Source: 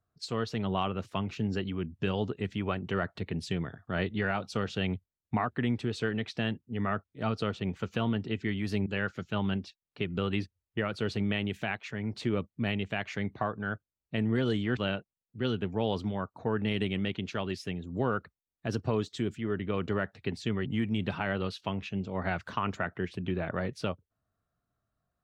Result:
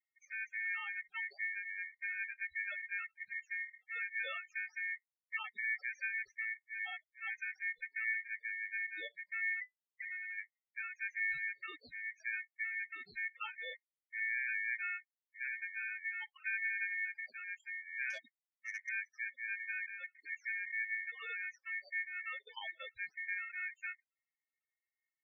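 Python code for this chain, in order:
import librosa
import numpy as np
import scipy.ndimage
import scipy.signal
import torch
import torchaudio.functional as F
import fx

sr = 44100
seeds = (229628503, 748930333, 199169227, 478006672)

y = scipy.signal.sosfilt(scipy.signal.butter(2, 3200.0, 'lowpass', fs=sr, output='sos'), x)
y = fx.low_shelf_res(y, sr, hz=110.0, db=-7.5, q=1.5)
y = fx.schmitt(y, sr, flips_db=-38.5, at=(9.55, 10.38))
y = fx.over_compress(y, sr, threshold_db=-33.0, ratio=-0.5, at=(19.8, 20.45))
y = fx.spec_topn(y, sr, count=4)
y = fx.rotary(y, sr, hz=0.65)
y = y * np.sin(2.0 * np.pi * 2000.0 * np.arange(len(y)) / sr)
y = fx.transformer_sat(y, sr, knee_hz=2300.0, at=(18.1, 18.89))
y = y * librosa.db_to_amplitude(-3.0)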